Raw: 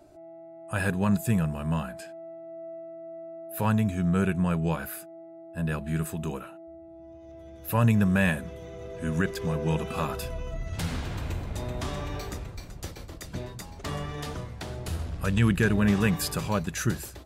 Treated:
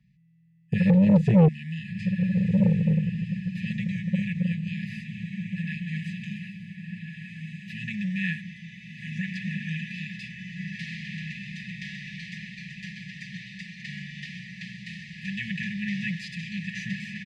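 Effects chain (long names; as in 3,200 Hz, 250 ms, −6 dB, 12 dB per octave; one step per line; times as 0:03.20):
compressor on every frequency bin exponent 0.6
noise gate with hold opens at −25 dBFS
high-pass filter 73 Hz 12 dB per octave, from 0:01.48 460 Hz
dynamic equaliser 150 Hz, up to +5 dB, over −42 dBFS, Q 2.4
linear-phase brick-wall band-stop 210–1,700 Hz
head-to-tape spacing loss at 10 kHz 40 dB
comb filter 5.4 ms, depth 85%
feedback delay with all-pass diffusion 1,432 ms, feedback 43%, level −4.5 dB
saturating transformer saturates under 300 Hz
level +5 dB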